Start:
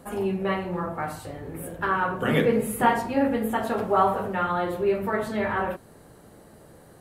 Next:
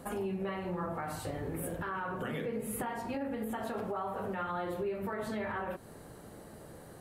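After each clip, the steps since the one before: compressor 16:1, threshold -31 dBFS, peak gain reduction 17 dB; limiter -27.5 dBFS, peak gain reduction 7.5 dB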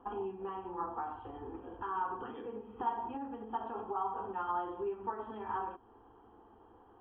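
rippled Chebyshev low-pass 3300 Hz, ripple 9 dB; fixed phaser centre 590 Hz, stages 6; upward expander 1.5:1, over -53 dBFS; gain +8.5 dB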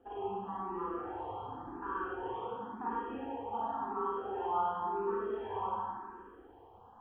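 Schroeder reverb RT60 2 s, combs from 31 ms, DRR -7 dB; endless phaser +0.93 Hz; gain -2 dB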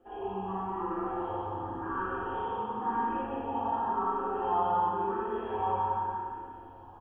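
on a send: feedback echo 0.174 s, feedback 53%, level -4 dB; on the sum: shoebox room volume 110 m³, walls mixed, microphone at 0.99 m

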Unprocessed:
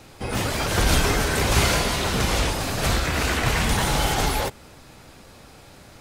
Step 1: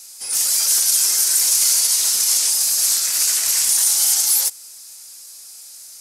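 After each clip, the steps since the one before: band shelf 7600 Hz +14 dB; limiter -9 dBFS, peak gain reduction 8 dB; differentiator; gain +4 dB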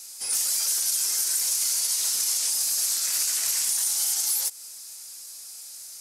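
compressor, threshold -20 dBFS, peak gain reduction 7.5 dB; gain -2 dB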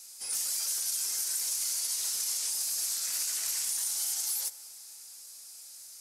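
reverb RT60 3.7 s, pre-delay 8 ms, DRR 13.5 dB; gain -7 dB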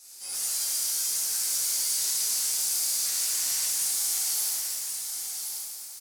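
in parallel at -7 dB: companded quantiser 4-bit; on the sum: echo 1.08 s -6 dB; shimmer reverb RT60 1.7 s, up +7 st, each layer -8 dB, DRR -8 dB; gain -8.5 dB

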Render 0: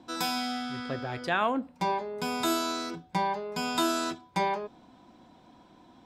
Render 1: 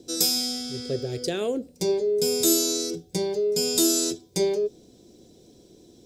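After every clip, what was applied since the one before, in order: EQ curve 120 Hz 0 dB, 270 Hz -6 dB, 420 Hz +9 dB, 950 Hz -26 dB, 3200 Hz -6 dB, 5900 Hz +10 dB; gain +6 dB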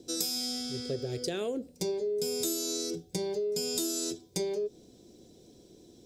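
compressor 6:1, threshold -26 dBFS, peak gain reduction 9.5 dB; gain -3 dB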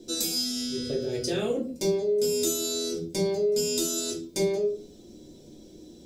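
reverb RT60 0.40 s, pre-delay 3 ms, DRR -3.5 dB

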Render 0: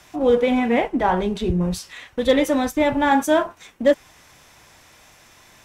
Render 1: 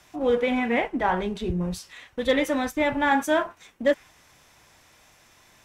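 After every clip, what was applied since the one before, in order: dynamic EQ 1900 Hz, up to +6 dB, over -35 dBFS, Q 0.9; gain -6 dB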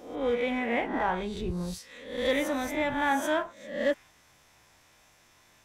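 spectral swells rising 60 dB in 0.62 s; gain -6.5 dB

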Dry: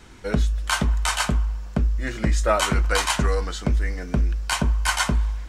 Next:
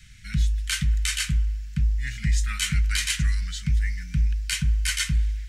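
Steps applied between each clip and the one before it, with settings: Chebyshev band-stop 160–1900 Hz, order 3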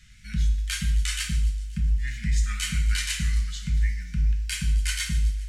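wow and flutter 50 cents; thin delay 0.264 s, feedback 48%, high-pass 3300 Hz, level -17 dB; non-linear reverb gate 0.24 s falling, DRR 3.5 dB; gain -4.5 dB

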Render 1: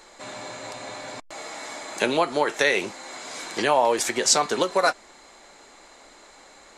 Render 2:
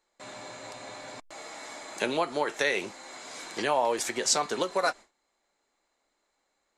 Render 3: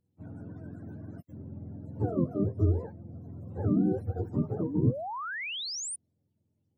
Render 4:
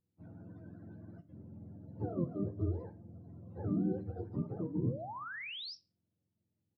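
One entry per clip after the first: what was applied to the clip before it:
gate with hold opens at -36 dBFS; gain -6 dB
spectrum mirrored in octaves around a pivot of 420 Hz; painted sound rise, 4.66–5.96, 240–9900 Hz -36 dBFS
on a send at -10 dB: reverb RT60 0.50 s, pre-delay 6 ms; on the sum: downsampling 11025 Hz; gain -8 dB

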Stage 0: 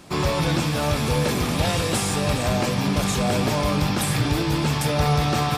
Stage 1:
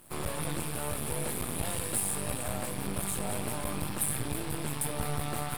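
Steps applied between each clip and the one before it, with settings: half-wave rectifier; bit-crush 9-bit; resonant high shelf 7700 Hz +9 dB, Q 3; gain -9 dB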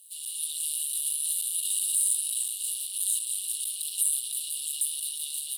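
AGC gain up to 7.5 dB; limiter -18 dBFS, peak gain reduction 10.5 dB; rippled Chebyshev high-pass 2800 Hz, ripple 9 dB; gain +7.5 dB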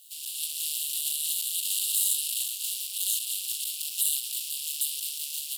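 spectral limiter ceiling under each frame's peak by 21 dB

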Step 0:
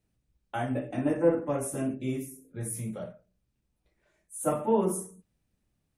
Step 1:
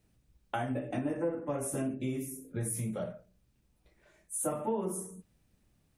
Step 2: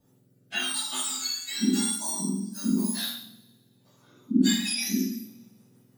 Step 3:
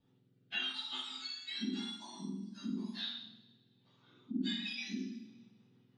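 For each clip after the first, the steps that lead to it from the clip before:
compressor 4:1, threshold -39 dBFS, peak gain reduction 18 dB; gain +6.5 dB
spectrum mirrored in octaves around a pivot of 1500 Hz; rotary speaker horn 0.9 Hz, later 6.3 Hz, at 3.68; two-slope reverb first 0.51 s, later 1.6 s, from -21 dB, DRR -5 dB; gain +6 dB
bell 590 Hz -8 dB 0.31 oct; compressor 1.5:1, threshold -37 dBFS, peak gain reduction 8 dB; ladder low-pass 4100 Hz, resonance 45%; gain +1 dB

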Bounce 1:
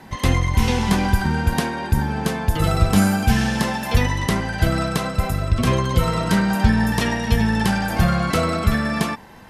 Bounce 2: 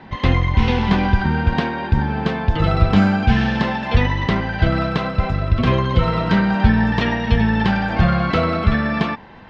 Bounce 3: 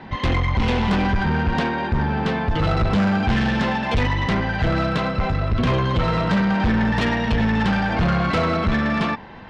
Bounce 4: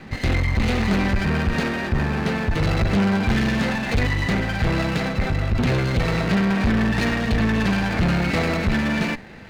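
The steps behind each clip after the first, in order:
LPF 3900 Hz 24 dB/oct; gain +2 dB
soft clip -17 dBFS, distortion -8 dB; gain +2 dB
minimum comb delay 0.46 ms

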